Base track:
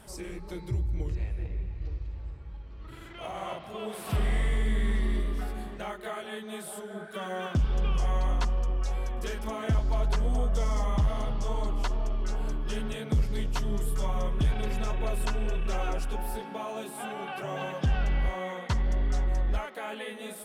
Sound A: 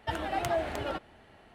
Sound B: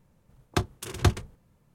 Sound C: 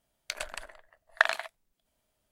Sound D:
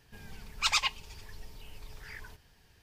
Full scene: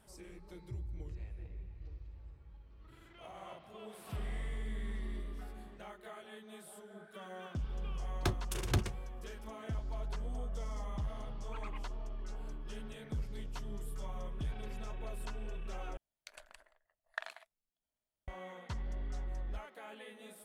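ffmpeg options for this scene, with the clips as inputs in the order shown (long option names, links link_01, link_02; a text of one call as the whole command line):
ffmpeg -i bed.wav -i cue0.wav -i cue1.wav -i cue2.wav -i cue3.wav -filter_complex "[0:a]volume=-13dB[link_01];[2:a]asoftclip=type=tanh:threshold=-21.5dB[link_02];[4:a]lowpass=frequency=2000:width=0.5412,lowpass=frequency=2000:width=1.3066[link_03];[link_01]asplit=2[link_04][link_05];[link_04]atrim=end=15.974[link_06];[3:a]atrim=end=2.31,asetpts=PTS-STARTPTS,volume=-17.5dB[link_07];[link_05]atrim=start=18.276[link_08];[link_02]atrim=end=1.74,asetpts=PTS-STARTPTS,volume=-3dB,afade=type=in:duration=0.004:curve=hsin,afade=type=out:start_time=1.736:duration=0.004:curve=hsin,adelay=7690[link_09];[link_03]atrim=end=2.82,asetpts=PTS-STARTPTS,volume=-16.5dB,afade=type=in:duration=0.004:curve=hsin,afade=type=out:start_time=2.816:duration=0.004:curve=hsin,adelay=480690S[link_10];[link_06][link_07]acrossfade=duration=0.004:curve1=hsin:curve2=hsin[link_11];[link_11][link_08]acrossfade=duration=0.004:curve1=hsin:curve2=hsin[link_12];[link_12][link_09][link_10]amix=inputs=3:normalize=0" out.wav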